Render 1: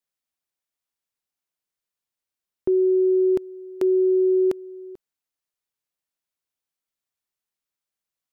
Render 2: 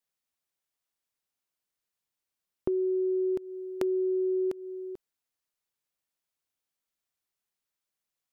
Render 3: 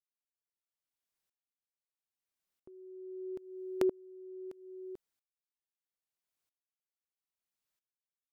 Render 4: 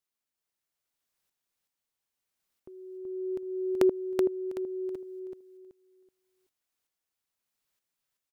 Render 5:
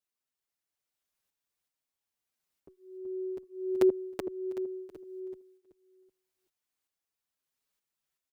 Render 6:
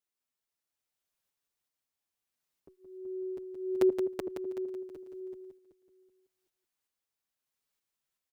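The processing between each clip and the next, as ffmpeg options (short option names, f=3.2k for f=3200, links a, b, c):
-af "acompressor=threshold=-27dB:ratio=6"
-af "aeval=exprs='val(0)*pow(10,-30*if(lt(mod(-0.77*n/s,1),2*abs(-0.77)/1000),1-mod(-0.77*n/s,1)/(2*abs(-0.77)/1000),(mod(-0.77*n/s,1)-2*abs(-0.77)/1000)/(1-2*abs(-0.77)/1000))/20)':c=same,volume=1dB"
-af "aecho=1:1:378|756|1134|1512:0.668|0.18|0.0487|0.0132,volume=6dB"
-filter_complex "[0:a]asplit=2[a][b];[b]adelay=6.5,afreqshift=1.4[c];[a][c]amix=inputs=2:normalize=1"
-af "aecho=1:1:172:0.473,volume=-1.5dB"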